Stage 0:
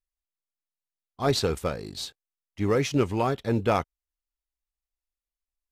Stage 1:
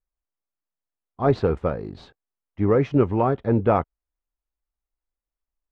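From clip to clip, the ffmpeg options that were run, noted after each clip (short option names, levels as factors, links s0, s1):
-af "lowpass=1300,volume=1.78"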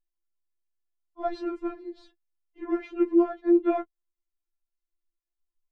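-af "lowshelf=f=360:t=q:w=3:g=6,afftfilt=real='re*4*eq(mod(b,16),0)':imag='im*4*eq(mod(b,16),0)':win_size=2048:overlap=0.75,volume=0.531"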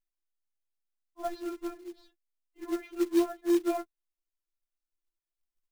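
-af "acrusher=bits=4:mode=log:mix=0:aa=0.000001,volume=0.562"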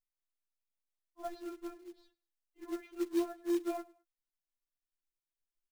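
-af "aecho=1:1:104|208:0.0708|0.0248,volume=0.447"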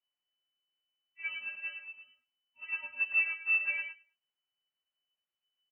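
-filter_complex "[0:a]asplit=2[s0][s1];[s1]adelay=110,highpass=300,lowpass=3400,asoftclip=type=hard:threshold=0.0251,volume=0.447[s2];[s0][s2]amix=inputs=2:normalize=0,lowpass=f=2600:t=q:w=0.5098,lowpass=f=2600:t=q:w=0.6013,lowpass=f=2600:t=q:w=0.9,lowpass=f=2600:t=q:w=2.563,afreqshift=-3000,volume=1.41"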